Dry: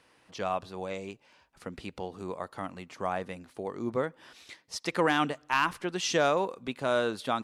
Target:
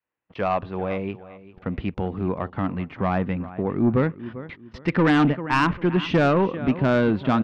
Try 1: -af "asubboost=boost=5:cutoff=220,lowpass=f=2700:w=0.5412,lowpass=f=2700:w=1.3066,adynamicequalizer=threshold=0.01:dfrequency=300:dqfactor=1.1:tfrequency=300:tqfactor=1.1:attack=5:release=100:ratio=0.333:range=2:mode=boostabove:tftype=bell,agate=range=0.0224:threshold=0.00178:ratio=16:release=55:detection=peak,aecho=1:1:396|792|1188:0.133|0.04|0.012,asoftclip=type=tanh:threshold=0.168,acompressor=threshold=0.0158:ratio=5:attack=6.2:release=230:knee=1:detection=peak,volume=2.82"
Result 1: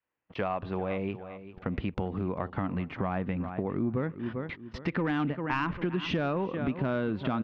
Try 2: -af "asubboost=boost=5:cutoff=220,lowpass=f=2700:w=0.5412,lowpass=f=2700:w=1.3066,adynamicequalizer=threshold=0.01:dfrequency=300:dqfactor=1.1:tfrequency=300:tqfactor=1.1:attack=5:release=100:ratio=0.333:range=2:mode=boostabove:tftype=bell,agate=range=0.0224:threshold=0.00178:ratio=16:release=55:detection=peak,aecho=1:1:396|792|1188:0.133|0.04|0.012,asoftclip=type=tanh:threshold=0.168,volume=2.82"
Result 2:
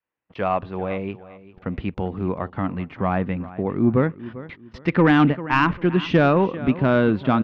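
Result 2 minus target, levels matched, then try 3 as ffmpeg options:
saturation: distortion -7 dB
-af "asubboost=boost=5:cutoff=220,lowpass=f=2700:w=0.5412,lowpass=f=2700:w=1.3066,adynamicequalizer=threshold=0.01:dfrequency=300:dqfactor=1.1:tfrequency=300:tqfactor=1.1:attack=5:release=100:ratio=0.333:range=2:mode=boostabove:tftype=bell,agate=range=0.0224:threshold=0.00178:ratio=16:release=55:detection=peak,aecho=1:1:396|792|1188:0.133|0.04|0.012,asoftclip=type=tanh:threshold=0.0841,volume=2.82"

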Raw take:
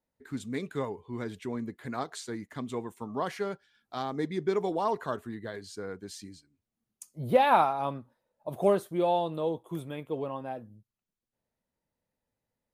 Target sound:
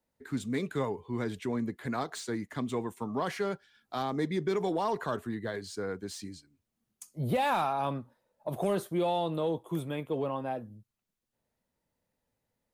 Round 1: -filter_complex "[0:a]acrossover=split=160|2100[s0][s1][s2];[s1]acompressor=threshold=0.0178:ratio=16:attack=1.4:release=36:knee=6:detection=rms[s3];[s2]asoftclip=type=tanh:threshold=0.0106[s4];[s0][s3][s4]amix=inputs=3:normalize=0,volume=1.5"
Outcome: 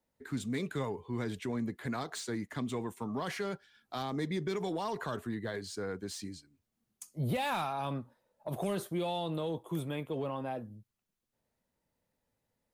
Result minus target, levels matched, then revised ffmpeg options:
compression: peak gain reduction +6.5 dB
-filter_complex "[0:a]acrossover=split=160|2100[s0][s1][s2];[s1]acompressor=threshold=0.0398:ratio=16:attack=1.4:release=36:knee=6:detection=rms[s3];[s2]asoftclip=type=tanh:threshold=0.0106[s4];[s0][s3][s4]amix=inputs=3:normalize=0,volume=1.5"

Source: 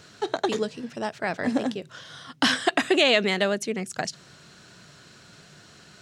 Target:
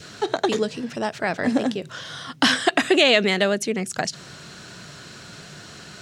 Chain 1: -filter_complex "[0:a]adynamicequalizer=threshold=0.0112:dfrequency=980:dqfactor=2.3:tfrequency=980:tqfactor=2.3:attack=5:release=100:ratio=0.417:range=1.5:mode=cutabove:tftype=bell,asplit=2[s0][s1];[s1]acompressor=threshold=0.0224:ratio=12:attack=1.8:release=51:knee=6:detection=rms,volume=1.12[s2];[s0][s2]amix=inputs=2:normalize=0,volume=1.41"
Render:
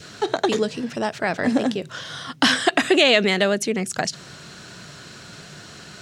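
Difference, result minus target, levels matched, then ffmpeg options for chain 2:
compression: peak gain reduction -7.5 dB
-filter_complex "[0:a]adynamicequalizer=threshold=0.0112:dfrequency=980:dqfactor=2.3:tfrequency=980:tqfactor=2.3:attack=5:release=100:ratio=0.417:range=1.5:mode=cutabove:tftype=bell,asplit=2[s0][s1];[s1]acompressor=threshold=0.00891:ratio=12:attack=1.8:release=51:knee=6:detection=rms,volume=1.12[s2];[s0][s2]amix=inputs=2:normalize=0,volume=1.41"

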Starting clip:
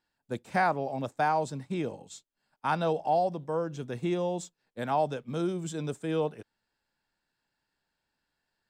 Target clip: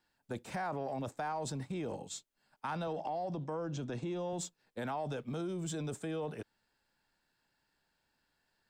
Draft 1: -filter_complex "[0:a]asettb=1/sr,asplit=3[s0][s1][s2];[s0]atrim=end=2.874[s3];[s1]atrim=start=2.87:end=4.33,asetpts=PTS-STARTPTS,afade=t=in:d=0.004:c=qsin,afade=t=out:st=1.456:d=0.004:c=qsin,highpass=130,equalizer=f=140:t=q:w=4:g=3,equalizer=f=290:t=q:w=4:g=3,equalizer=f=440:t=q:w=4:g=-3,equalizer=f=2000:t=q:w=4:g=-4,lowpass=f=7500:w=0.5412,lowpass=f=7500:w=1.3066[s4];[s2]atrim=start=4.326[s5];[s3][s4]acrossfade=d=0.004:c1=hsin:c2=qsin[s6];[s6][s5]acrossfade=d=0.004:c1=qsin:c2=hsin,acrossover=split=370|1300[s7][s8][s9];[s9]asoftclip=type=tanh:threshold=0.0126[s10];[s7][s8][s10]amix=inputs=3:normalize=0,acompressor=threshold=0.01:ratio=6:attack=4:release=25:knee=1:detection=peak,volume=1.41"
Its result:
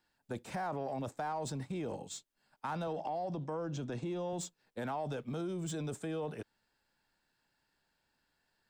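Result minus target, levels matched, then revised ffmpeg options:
saturation: distortion +8 dB
-filter_complex "[0:a]asettb=1/sr,asplit=3[s0][s1][s2];[s0]atrim=end=2.874[s3];[s1]atrim=start=2.87:end=4.33,asetpts=PTS-STARTPTS,afade=t=in:d=0.004:c=qsin,afade=t=out:st=1.456:d=0.004:c=qsin,highpass=130,equalizer=f=140:t=q:w=4:g=3,equalizer=f=290:t=q:w=4:g=3,equalizer=f=440:t=q:w=4:g=-3,equalizer=f=2000:t=q:w=4:g=-4,lowpass=f=7500:w=0.5412,lowpass=f=7500:w=1.3066[s4];[s2]atrim=start=4.326[s5];[s3][s4]acrossfade=d=0.004:c1=hsin:c2=qsin[s6];[s6][s5]acrossfade=d=0.004:c1=qsin:c2=hsin,acrossover=split=370|1300[s7][s8][s9];[s9]asoftclip=type=tanh:threshold=0.0355[s10];[s7][s8][s10]amix=inputs=3:normalize=0,acompressor=threshold=0.01:ratio=6:attack=4:release=25:knee=1:detection=peak,volume=1.41"

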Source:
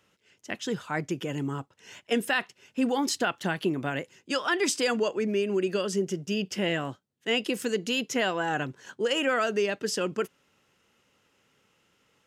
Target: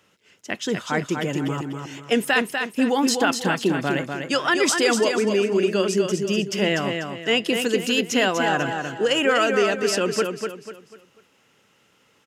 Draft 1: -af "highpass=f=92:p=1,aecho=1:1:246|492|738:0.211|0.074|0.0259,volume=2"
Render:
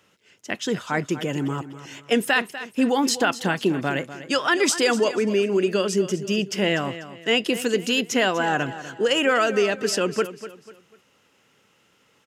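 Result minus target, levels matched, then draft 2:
echo-to-direct -8 dB
-af "highpass=f=92:p=1,aecho=1:1:246|492|738|984:0.531|0.186|0.065|0.0228,volume=2"

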